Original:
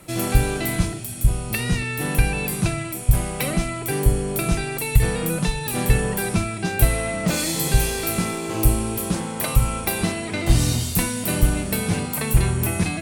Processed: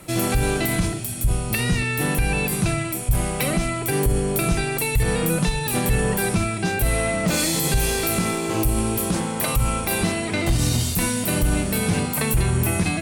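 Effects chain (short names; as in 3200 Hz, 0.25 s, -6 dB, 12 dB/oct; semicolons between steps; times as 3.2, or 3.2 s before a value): limiter -14 dBFS, peak gain reduction 10.5 dB; gain +3 dB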